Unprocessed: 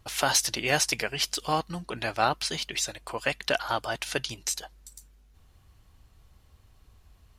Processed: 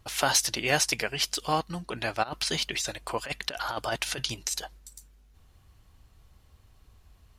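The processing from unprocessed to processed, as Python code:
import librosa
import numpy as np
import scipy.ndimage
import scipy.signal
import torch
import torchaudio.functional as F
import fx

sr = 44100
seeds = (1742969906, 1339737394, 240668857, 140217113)

y = fx.over_compress(x, sr, threshold_db=-30.0, ratio=-0.5, at=(2.22, 4.77), fade=0.02)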